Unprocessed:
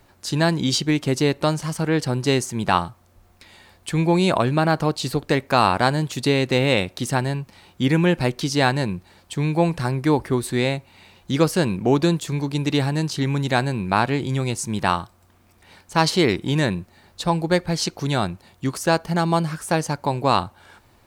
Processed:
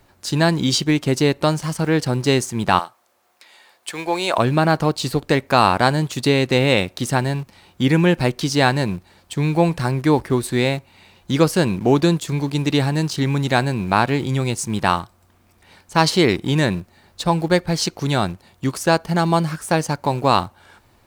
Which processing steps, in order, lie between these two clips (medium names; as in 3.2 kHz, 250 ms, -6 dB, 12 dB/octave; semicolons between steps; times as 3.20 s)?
2.79–4.38 s: high-pass 520 Hz 12 dB/octave; in parallel at -9.5 dB: small samples zeroed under -29 dBFS